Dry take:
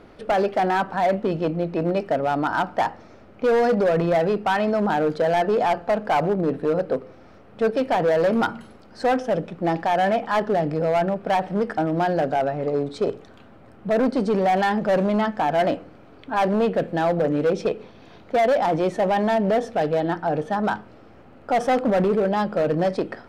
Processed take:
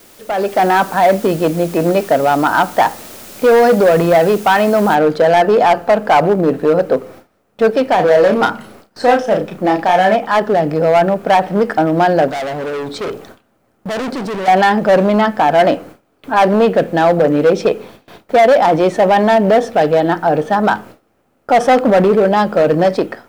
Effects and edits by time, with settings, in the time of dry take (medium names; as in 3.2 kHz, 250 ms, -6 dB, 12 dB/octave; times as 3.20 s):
4.95 s: noise floor step -46 dB -65 dB
7.95–10.15 s: doubling 33 ms -5 dB
12.28–14.48 s: hard clipper -29.5 dBFS
whole clip: gate with hold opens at -35 dBFS; bass shelf 160 Hz -7 dB; level rider gain up to 11.5 dB